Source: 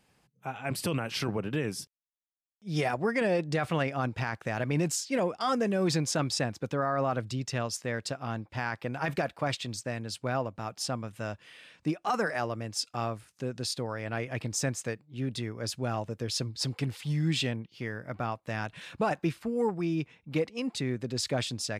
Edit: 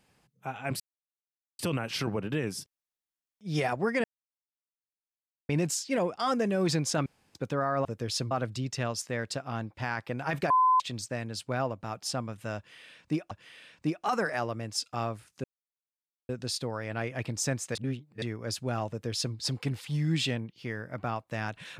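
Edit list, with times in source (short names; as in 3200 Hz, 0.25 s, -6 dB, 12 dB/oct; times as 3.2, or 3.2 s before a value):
0.8 insert silence 0.79 s
3.25–4.7 mute
6.27–6.56 room tone
9.25–9.55 bleep 1020 Hz -19 dBFS
11.32–12.06 loop, 2 plays
13.45 insert silence 0.85 s
14.91–15.38 reverse
16.05–16.51 copy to 7.06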